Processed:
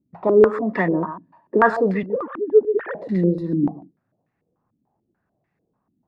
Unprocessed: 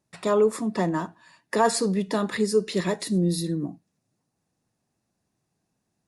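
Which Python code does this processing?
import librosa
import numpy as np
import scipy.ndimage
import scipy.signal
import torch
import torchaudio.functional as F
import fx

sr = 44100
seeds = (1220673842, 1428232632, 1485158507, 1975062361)

y = fx.sine_speech(x, sr, at=(2.03, 2.95))
y = y + 10.0 ** (-12.5 / 20.0) * np.pad(y, (int(130 * sr / 1000.0), 0))[:len(y)]
y = fx.filter_held_lowpass(y, sr, hz=6.8, low_hz=270.0, high_hz=2000.0)
y = F.gain(torch.from_numpy(y), 2.0).numpy()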